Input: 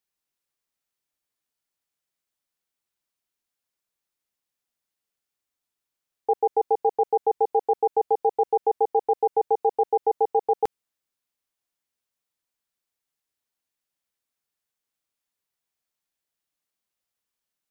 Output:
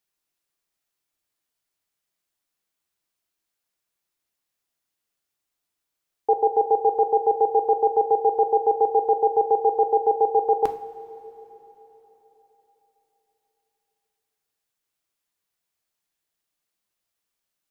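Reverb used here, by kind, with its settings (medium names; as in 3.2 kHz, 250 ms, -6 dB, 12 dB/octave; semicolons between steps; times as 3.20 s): two-slope reverb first 0.45 s, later 4.1 s, from -16 dB, DRR 7 dB; trim +2.5 dB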